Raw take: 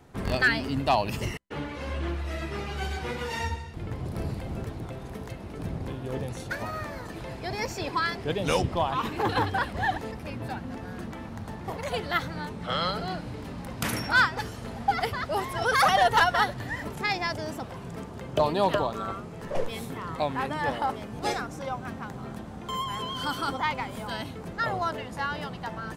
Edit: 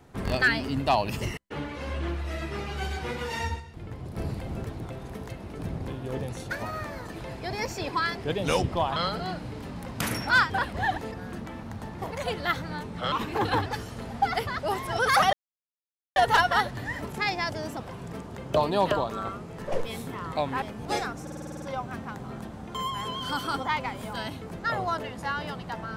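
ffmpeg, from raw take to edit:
-filter_complex "[0:a]asplit=18[s0][s1][s2][s3][s4][s5][s6][s7][s8][s9][s10][s11][s12][s13][s14][s15][s16][s17];[s0]atrim=end=3.602[s18];[s1]atrim=start=3.598:end=4.172,asetpts=PTS-STARTPTS,volume=0.596[s19];[s2]atrim=start=4.168:end=8.962[s20];[s3]atrim=start=12.778:end=14.322[s21];[s4]atrim=start=9.498:end=10.142[s22];[s5]atrim=start=10.798:end=12.782[s23];[s6]atrim=start=8.958:end=9.502[s24];[s7]atrim=start=14.318:end=15.99,asetpts=PTS-STARTPTS,afade=t=out:st=1.668:d=0.004:c=hsin,apad=pad_dur=0.83[s25];[s8]atrim=start=15.99:end=20.452,asetpts=PTS-STARTPTS,afade=t=in:d=0.004:c=hsin[s26];[s9]atrim=start=20.958:end=21.612[s27];[s10]atrim=start=21.558:end=21.612[s28];[s11]atrim=start=21.558:end=21.612[s29];[s12]atrim=start=21.558:end=21.612[s30];[s13]atrim=start=21.558:end=21.612[s31];[s14]atrim=start=21.558:end=21.612[s32];[s15]atrim=start=21.558:end=21.612[s33];[s16]atrim=start=21.558:end=21.612[s34];[s17]atrim=start=21.558[s35];[s18][s19]acrossfade=d=0.004:c1=hsin:c2=hsin[s36];[s36][s20]acrossfade=d=0.004:c1=hsin:c2=hsin[s37];[s37][s21]acrossfade=d=0.004:c1=hsin:c2=hsin[s38];[s38][s22]acrossfade=d=0.004:c1=hsin:c2=hsin[s39];[s39][s23]acrossfade=d=0.004:c1=hsin:c2=hsin[s40];[s40][s24]acrossfade=d=0.004:c1=hsin:c2=hsin[s41];[s25][s26]concat=n=2:v=0:a=1[s42];[s41][s42]acrossfade=d=0.004:c1=hsin:c2=hsin[s43];[s43][s27]acrossfade=d=0.004:c1=hsin:c2=hsin[s44];[s44][s28]acrossfade=d=0.004:c1=hsin:c2=hsin[s45];[s45][s29]acrossfade=d=0.004:c1=hsin:c2=hsin[s46];[s46][s30]acrossfade=d=0.004:c1=hsin:c2=hsin[s47];[s47][s31]acrossfade=d=0.004:c1=hsin:c2=hsin[s48];[s48][s32]acrossfade=d=0.004:c1=hsin:c2=hsin[s49];[s49][s33]acrossfade=d=0.004:c1=hsin:c2=hsin[s50];[s50][s34]acrossfade=d=0.004:c1=hsin:c2=hsin[s51];[s51][s35]acrossfade=d=0.004:c1=hsin:c2=hsin"

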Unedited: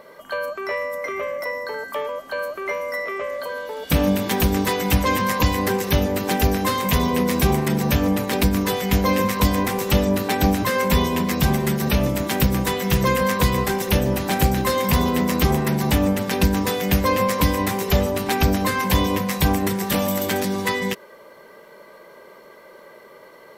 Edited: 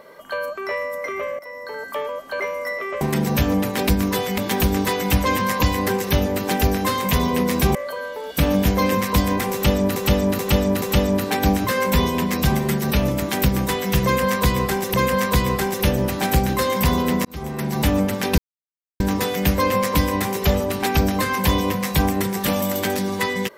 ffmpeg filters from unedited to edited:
-filter_complex "[0:a]asplit=13[s0][s1][s2][s3][s4][s5][s6][s7][s8][s9][s10][s11][s12];[s0]atrim=end=1.39,asetpts=PTS-STARTPTS,afade=t=out:st=1.386:d=0.004:c=hsin:silence=0.177828[s13];[s1]atrim=start=1.39:end=2.402,asetpts=PTS-STARTPTS,afade=t=in:d=0.49:silence=0.177828[s14];[s2]atrim=start=2.668:end=3.282[s15];[s3]atrim=start=7.548:end=8.922[s16];[s4]atrim=start=4.178:end=7.552[s17];[s5]atrim=start=3.278:end=4.182[s18];[s6]atrim=start=8.918:end=10.232[s19];[s7]atrim=start=9.798:end=10.232[s20];[s8]atrim=start=9.798:end=10.232[s21];[s9]atrim=start=9.798:end=13.922[s22];[s10]atrim=start=13.018:end=15.33,asetpts=PTS-STARTPTS,afade=t=out:st=2.308:d=0.004:c=hsin[s23];[s11]atrim=start=15.33:end=16.46,asetpts=PTS-STARTPTS,afade=t=in:d=0.62,afade=t=out:st=1.126:d=0.004:c=hsin,apad=pad_dur=0.62[s24];[s12]atrim=start=16.46,asetpts=PTS-STARTPTS,afade=t=in:d=0.004:c=hsin[s25];[s13][s14]concat=n=2:v=0:a=1[s26];[s26][s15]acrossfade=d=0.004:c1=hsin:c2=hsin[s27];[s27][s16]acrossfade=d=0.004:c1=hsin:c2=hsin[s28];[s28][s17]acrossfade=d=0.004:c1=hsin:c2=hsin[s29];[s29][s18]acrossfade=d=0.004:c1=hsin:c2=hsin[s30];[s30][s19]acrossfade=d=0.004:c1=hsin:c2=hsin[s31];[s31][s20]acrossfade=d=0.004:c1=hsin:c2=hsin[s32];[s32][s21]acrossfade=d=0.004:c1=hsin:c2=hsin[s33];[s33][s22]acrossfade=d=0.004:c1=hsin:c2=hsin[s34];[s23][s24][s25]concat=n=3:v=0:a=1[s35];[s34][s35]acrossfade=d=0.004:c1=hsin:c2=hsin"

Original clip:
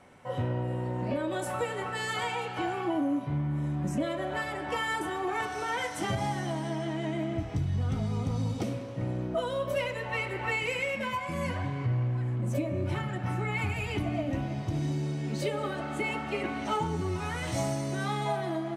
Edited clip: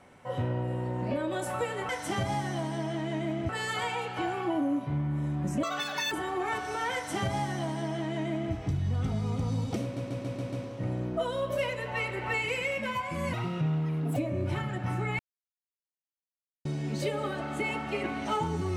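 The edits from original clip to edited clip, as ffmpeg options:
-filter_complex "[0:a]asplit=14[s0][s1][s2][s3][s4][s5][s6][s7][s8][s9][s10][s11][s12][s13];[s0]atrim=end=1.892[s14];[s1]atrim=start=5.808:end=7.412[s15];[s2]atrim=start=1.888:end=4.034[s16];[s3]atrim=start=4.03:end=4.99,asetpts=PTS-STARTPTS,asetrate=87318,aresample=44100[s17];[s4]atrim=start=4.986:end=8.842[s18];[s5]atrim=start=8.698:end=8.842[s19];[s6]atrim=start=8.698:end=8.842[s20];[s7]atrim=start=8.698:end=8.842[s21];[s8]atrim=start=8.698:end=8.842[s22];[s9]atrim=start=8.698:end=11.514[s23];[s10]atrim=start=11.51:end=12.56,asetpts=PTS-STARTPTS,asetrate=56007,aresample=44100[s24];[s11]atrim=start=12.556:end=13.59,asetpts=PTS-STARTPTS,afade=t=out:st=1.03:d=0.004:c=hsin[s25];[s12]atrim=start=13.59:end=15.05,asetpts=PTS-STARTPTS,volume=0[s26];[s13]atrim=start=15.05,asetpts=PTS-STARTPTS,afade=t=in:d=0.004:c=hsin[s27];[s14][s15]acrossfade=d=0.004:c1=hsin:c2=hsin[s28];[s28][s16]acrossfade=d=0.004:c1=hsin:c2=hsin[s29];[s29][s17]acrossfade=d=0.004:c1=hsin:c2=hsin[s30];[s30][s18]acrossfade=d=0.004:c1=hsin:c2=hsin[s31];[s31][s19]acrossfade=d=0.004:c1=hsin:c2=hsin[s32];[s32][s20]acrossfade=d=0.004:c1=hsin:c2=hsin[s33];[s33][s21]acrossfade=d=0.004:c1=hsin:c2=hsin[s34];[s34][s22]acrossfade=d=0.004:c1=hsin:c2=hsin[s35];[s35][s23]acrossfade=d=0.004:c1=hsin:c2=hsin[s36];[s36][s24]acrossfade=d=0.004:c1=hsin:c2=hsin[s37];[s25][s26][s27]concat=n=3:v=0:a=1[s38];[s37][s38]acrossfade=d=0.004:c1=hsin:c2=hsin"

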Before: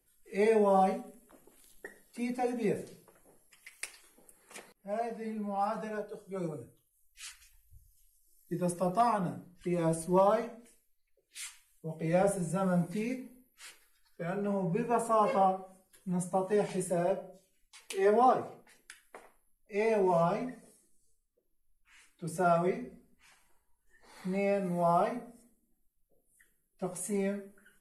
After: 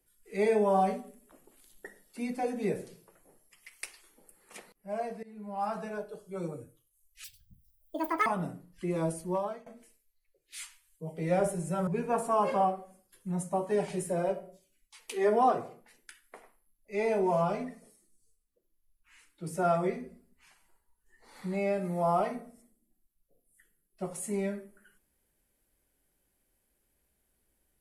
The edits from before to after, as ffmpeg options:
-filter_complex "[0:a]asplit=6[s0][s1][s2][s3][s4][s5];[s0]atrim=end=5.23,asetpts=PTS-STARTPTS,afade=t=out:st=5.226:d=0.004:c=hsin:silence=0.105925[s6];[s1]atrim=start=5.23:end=7.244,asetpts=PTS-STARTPTS,afade=t=in:d=0.46:silence=0.105925[s7];[s2]atrim=start=7.24:end=9.09,asetpts=PTS-STARTPTS,asetrate=79821,aresample=44100[s8];[s3]atrim=start=9.086:end=10.49,asetpts=PTS-STARTPTS,afade=t=out:st=0.714:d=0.69:silence=0.105925[s9];[s4]atrim=start=10.49:end=12.702,asetpts=PTS-STARTPTS,afade=t=in:d=0.004:c=hsin:silence=0.105925[s10];[s5]atrim=start=14.678[s11];[s6][s7]concat=n=2:v=0:a=1[s12];[s12][s8]acrossfade=d=0.004:c1=hsin:c2=hsin[s13];[s9][s10]concat=n=2:v=0:a=1[s14];[s13][s14]acrossfade=d=0.004:c1=hsin:c2=hsin[s15];[s15][s11]acrossfade=d=0.004:c1=hsin:c2=hsin"

